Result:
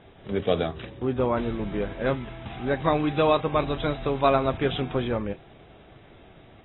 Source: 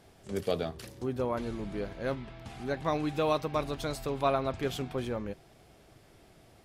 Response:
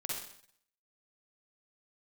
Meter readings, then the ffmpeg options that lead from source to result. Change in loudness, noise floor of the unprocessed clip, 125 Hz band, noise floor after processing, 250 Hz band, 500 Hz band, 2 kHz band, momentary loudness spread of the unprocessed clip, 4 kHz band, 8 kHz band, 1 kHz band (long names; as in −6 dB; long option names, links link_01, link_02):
+7.0 dB, −59 dBFS, +7.5 dB, −52 dBFS, +7.5 dB, +7.0 dB, +8.0 dB, 10 LU, +6.5 dB, below −30 dB, +7.5 dB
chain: -af "acontrast=81" -ar 22050 -c:a aac -b:a 16k